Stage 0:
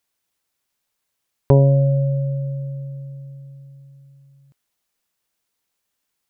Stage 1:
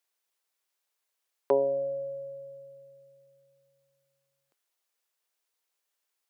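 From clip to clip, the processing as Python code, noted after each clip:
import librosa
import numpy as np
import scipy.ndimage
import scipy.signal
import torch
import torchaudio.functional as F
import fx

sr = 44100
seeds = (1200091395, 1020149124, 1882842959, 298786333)

y = scipy.signal.sosfilt(scipy.signal.butter(4, 360.0, 'highpass', fs=sr, output='sos'), x)
y = y * 10.0 ** (-5.5 / 20.0)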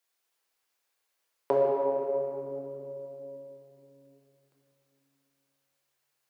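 y = fx.room_shoebox(x, sr, seeds[0], volume_m3=160.0, walls='hard', distance_m=0.69)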